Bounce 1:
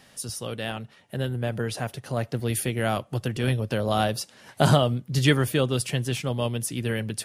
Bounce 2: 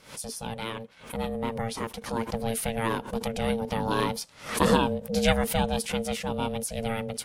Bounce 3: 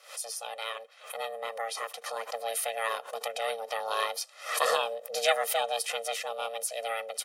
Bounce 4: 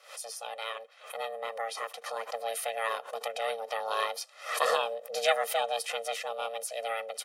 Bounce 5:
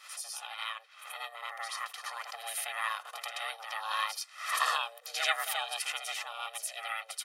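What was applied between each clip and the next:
ring modulator 340 Hz; backwards sustainer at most 130 dB/s
HPF 570 Hz 24 dB/oct; comb 1.6 ms, depth 80%; gain -1.5 dB
high shelf 4500 Hz -5.5 dB
HPF 970 Hz 24 dB/oct; on a send: reverse echo 81 ms -6 dB

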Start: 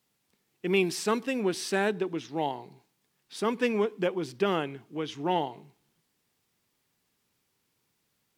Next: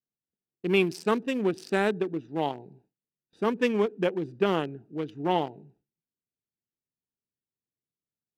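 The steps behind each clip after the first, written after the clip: Wiener smoothing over 41 samples; gate with hold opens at -55 dBFS; gain +2.5 dB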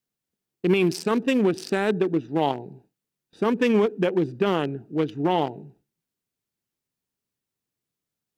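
limiter -20 dBFS, peak gain reduction 10 dB; gain +8.5 dB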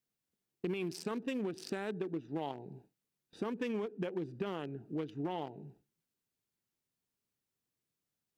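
compressor 4:1, threshold -33 dBFS, peak gain reduction 14.5 dB; gain -3.5 dB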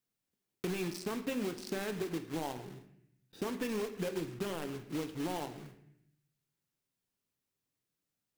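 block floating point 3-bit; on a send at -7.5 dB: reverb RT60 0.75 s, pre-delay 4 ms

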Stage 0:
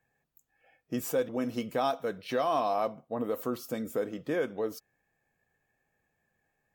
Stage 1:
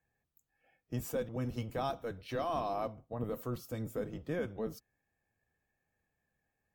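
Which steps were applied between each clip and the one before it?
octaver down 1 oct, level +2 dB; gain -7 dB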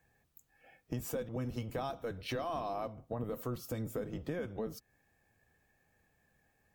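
compressor 4:1, threshold -47 dBFS, peak gain reduction 14 dB; gain +10 dB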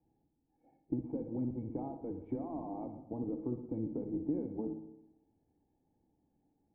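vocal tract filter u; on a send at -7 dB: reverb RT60 0.95 s, pre-delay 56 ms; on the sum: gain +9.5 dB

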